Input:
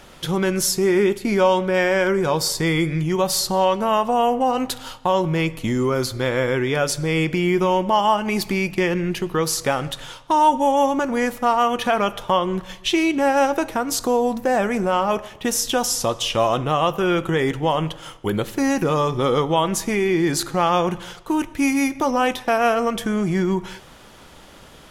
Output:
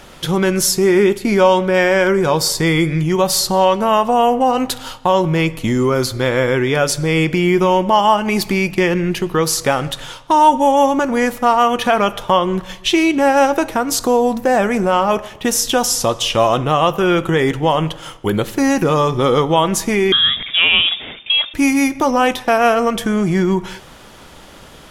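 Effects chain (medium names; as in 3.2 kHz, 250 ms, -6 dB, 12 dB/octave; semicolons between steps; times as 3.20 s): 20.12–21.54 s: frequency inversion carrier 3.6 kHz; trim +5 dB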